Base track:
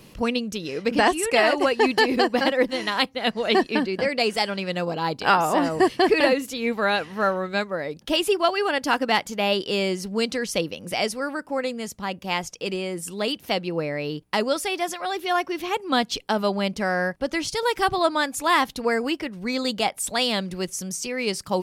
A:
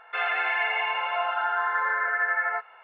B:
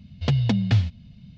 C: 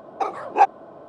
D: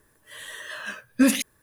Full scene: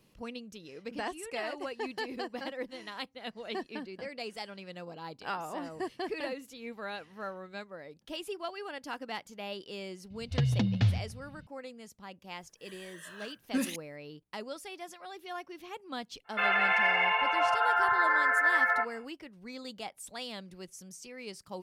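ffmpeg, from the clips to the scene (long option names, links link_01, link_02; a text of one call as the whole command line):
ffmpeg -i bed.wav -i cue0.wav -i cue1.wav -i cue2.wav -i cue3.wav -filter_complex "[0:a]volume=-17.5dB[link_01];[2:a]asplit=2[link_02][link_03];[link_03]adelay=144,lowpass=frequency=2000:poles=1,volume=-16dB,asplit=2[link_04][link_05];[link_05]adelay=144,lowpass=frequency=2000:poles=1,volume=0.35,asplit=2[link_06][link_07];[link_07]adelay=144,lowpass=frequency=2000:poles=1,volume=0.35[link_08];[link_02][link_04][link_06][link_08]amix=inputs=4:normalize=0[link_09];[1:a]acontrast=68[link_10];[link_09]atrim=end=1.37,asetpts=PTS-STARTPTS,volume=-6.5dB,afade=type=in:duration=0.004:curve=hsin,afade=type=out:start_time=1.366:duration=0.004:curve=hsin,adelay=445410S[link_11];[4:a]atrim=end=1.62,asetpts=PTS-STARTPTS,volume=-12.5dB,afade=type=in:duration=0.004:curve=hsin,afade=type=out:start_time=1.616:duration=0.004:curve=hsin,adelay=12340[link_12];[link_10]atrim=end=2.83,asetpts=PTS-STARTPTS,volume=-6.5dB,afade=type=in:duration=0.1,afade=type=out:start_time=2.73:duration=0.1,adelay=16240[link_13];[link_01][link_11][link_12][link_13]amix=inputs=4:normalize=0" out.wav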